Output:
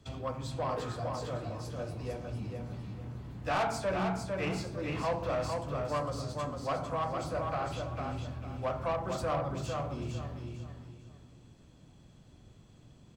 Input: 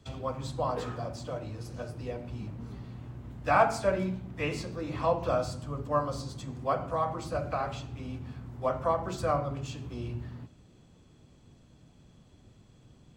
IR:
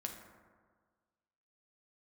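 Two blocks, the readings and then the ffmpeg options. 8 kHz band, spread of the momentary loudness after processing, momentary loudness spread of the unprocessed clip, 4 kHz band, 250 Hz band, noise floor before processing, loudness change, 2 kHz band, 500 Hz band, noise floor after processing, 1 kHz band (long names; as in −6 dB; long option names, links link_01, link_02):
−0.5 dB, 10 LU, 13 LU, +0.5 dB, −1.5 dB, −59 dBFS, −3.0 dB, −3.0 dB, −3.0 dB, −58 dBFS, −3.5 dB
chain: -filter_complex "[0:a]asplit=2[link_01][link_02];[link_02]adelay=26,volume=-14dB[link_03];[link_01][link_03]amix=inputs=2:normalize=0,asoftclip=type=tanh:threshold=-21dB,aecho=1:1:452|904|1356|1808:0.562|0.163|0.0473|0.0137,aeval=exprs='0.126*(cos(1*acos(clip(val(0)/0.126,-1,1)))-cos(1*PI/2))+0.01*(cos(5*acos(clip(val(0)/0.126,-1,1)))-cos(5*PI/2))':channel_layout=same,volume=-4dB"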